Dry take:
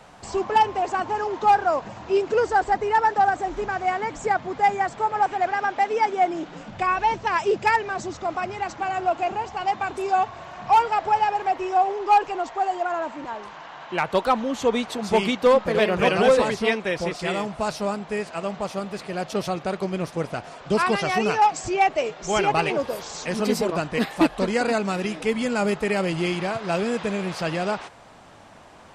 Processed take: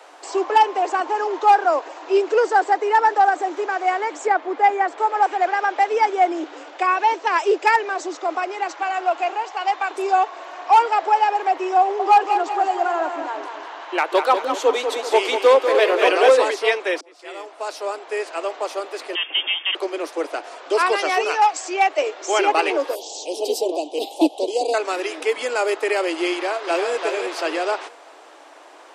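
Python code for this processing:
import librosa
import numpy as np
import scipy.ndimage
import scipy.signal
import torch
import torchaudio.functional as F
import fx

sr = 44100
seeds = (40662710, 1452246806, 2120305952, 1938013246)

y = fx.bass_treble(x, sr, bass_db=9, treble_db=-9, at=(4.27, 4.98))
y = fx.weighting(y, sr, curve='A', at=(8.7, 9.95))
y = fx.echo_feedback(y, sr, ms=194, feedback_pct=45, wet_db=-7.5, at=(11.8, 16.3))
y = fx.freq_invert(y, sr, carrier_hz=3400, at=(19.15, 19.75))
y = fx.highpass(y, sr, hz=590.0, slope=6, at=(21.24, 21.98))
y = fx.cheby1_bandstop(y, sr, low_hz=810.0, high_hz=3000.0, order=3, at=(22.95, 24.74))
y = fx.echo_throw(y, sr, start_s=26.33, length_s=0.59, ms=340, feedback_pct=35, wet_db=-5.5)
y = fx.edit(y, sr, fx.fade_in_span(start_s=17.01, length_s=1.23), tone=tone)
y = scipy.signal.sosfilt(scipy.signal.butter(16, 290.0, 'highpass', fs=sr, output='sos'), y)
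y = y * 10.0 ** (3.5 / 20.0)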